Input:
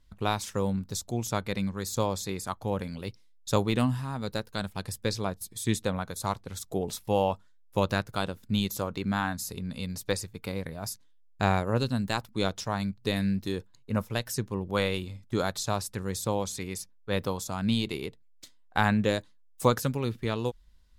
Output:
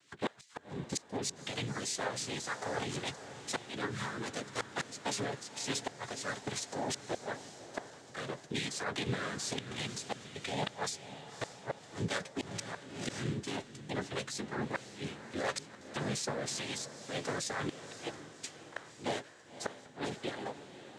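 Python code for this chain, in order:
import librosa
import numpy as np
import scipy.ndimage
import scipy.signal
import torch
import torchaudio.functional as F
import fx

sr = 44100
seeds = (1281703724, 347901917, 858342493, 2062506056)

p1 = fx.highpass(x, sr, hz=840.0, slope=6)
p2 = fx.notch(p1, sr, hz=3600.0, q=9.9)
p3 = fx.over_compress(p2, sr, threshold_db=-45.0, ratio=-1.0)
p4 = p2 + (p3 * librosa.db_to_amplitude(-0.5))
p5 = fx.tremolo_random(p4, sr, seeds[0], hz=3.5, depth_pct=55)
p6 = fx.noise_vocoder(p5, sr, seeds[1], bands=6)
p7 = fx.chorus_voices(p6, sr, voices=6, hz=0.16, base_ms=11, depth_ms=4.0, mix_pct=30)
p8 = fx.rotary_switch(p7, sr, hz=6.7, then_hz=1.0, switch_at_s=3.71)
p9 = fx.gate_flip(p8, sr, shuts_db=-29.0, range_db=-29)
p10 = p9 + fx.echo_diffused(p9, sr, ms=550, feedback_pct=49, wet_db=-12.0, dry=0)
p11 = fx.pre_swell(p10, sr, db_per_s=79.0, at=(12.37, 13.32))
y = p11 * librosa.db_to_amplitude(6.5)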